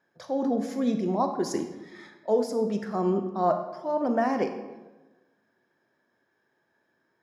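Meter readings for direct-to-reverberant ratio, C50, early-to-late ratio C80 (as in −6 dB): 6.5 dB, 8.0 dB, 10.0 dB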